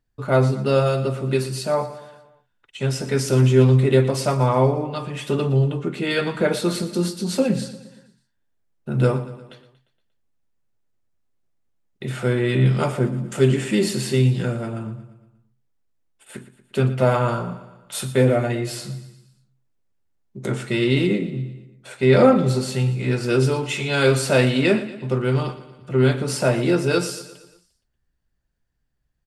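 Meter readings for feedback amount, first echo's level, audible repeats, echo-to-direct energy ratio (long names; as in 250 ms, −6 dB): 53%, −14.5 dB, 4, −13.0 dB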